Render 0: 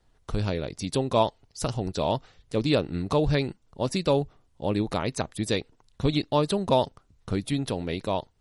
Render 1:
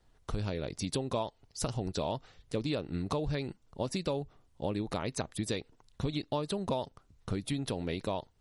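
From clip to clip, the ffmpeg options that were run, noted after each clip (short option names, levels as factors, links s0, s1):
-af "acompressor=threshold=0.0398:ratio=6,volume=0.841"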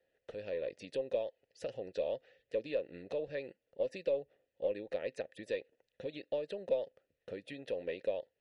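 -filter_complex "[0:a]asplit=3[s0][s1][s2];[s0]bandpass=f=530:t=q:w=8,volume=1[s3];[s1]bandpass=f=1840:t=q:w=8,volume=0.501[s4];[s2]bandpass=f=2480:t=q:w=8,volume=0.355[s5];[s3][s4][s5]amix=inputs=3:normalize=0,aeval=exprs='0.0422*(cos(1*acos(clip(val(0)/0.0422,-1,1)))-cos(1*PI/2))+0.000335*(cos(6*acos(clip(val(0)/0.0422,-1,1)))-cos(6*PI/2))':c=same,volume=2.11"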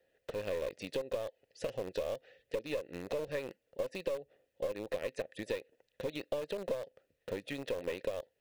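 -filter_complex "[0:a]acompressor=threshold=0.0126:ratio=16,asplit=2[s0][s1];[s1]acrusher=bits=4:dc=4:mix=0:aa=0.000001,volume=0.355[s2];[s0][s2]amix=inputs=2:normalize=0,volume=1.68"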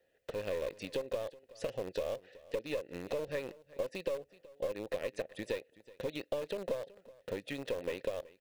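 -af "aecho=1:1:375:0.0944"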